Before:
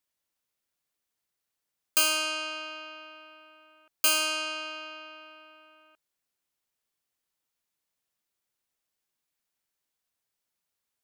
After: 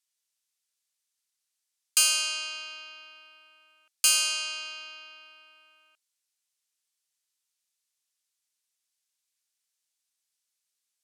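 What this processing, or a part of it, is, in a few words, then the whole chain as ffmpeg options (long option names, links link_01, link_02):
piezo pickup straight into a mixer: -af "lowpass=7900,aderivative,volume=8.5dB"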